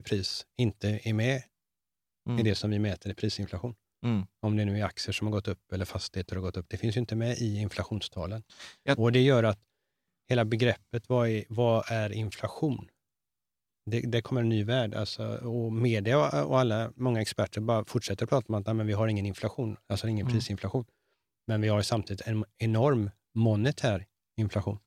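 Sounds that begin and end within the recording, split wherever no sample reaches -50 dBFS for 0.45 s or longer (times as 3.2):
2.26–9.55
10.29–12.89
13.87–20.84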